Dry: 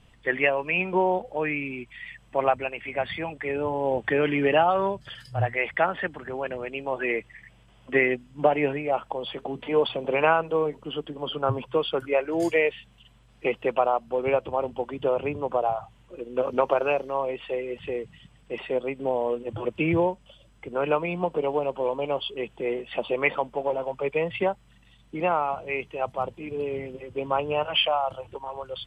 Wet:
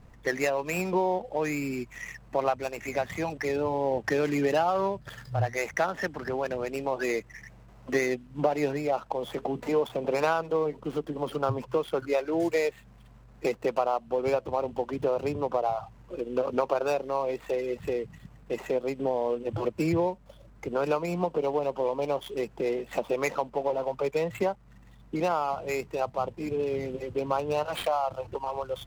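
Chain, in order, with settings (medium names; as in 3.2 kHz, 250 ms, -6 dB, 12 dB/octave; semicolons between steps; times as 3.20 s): median filter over 15 samples; compression 2:1, threshold -34 dBFS, peak gain reduction 11 dB; trim +5 dB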